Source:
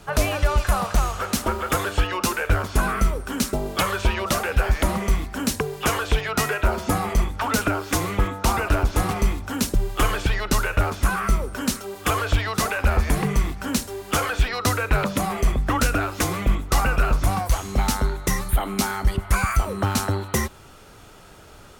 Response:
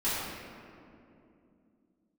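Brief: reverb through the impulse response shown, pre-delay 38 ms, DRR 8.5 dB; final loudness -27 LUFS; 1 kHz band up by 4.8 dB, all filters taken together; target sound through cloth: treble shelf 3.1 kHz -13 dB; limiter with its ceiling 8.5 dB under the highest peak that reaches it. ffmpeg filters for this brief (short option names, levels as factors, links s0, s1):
-filter_complex "[0:a]equalizer=f=1000:t=o:g=8,alimiter=limit=0.188:level=0:latency=1,asplit=2[s0][s1];[1:a]atrim=start_sample=2205,adelay=38[s2];[s1][s2]afir=irnorm=-1:irlink=0,volume=0.119[s3];[s0][s3]amix=inputs=2:normalize=0,highshelf=f=3100:g=-13,volume=0.794"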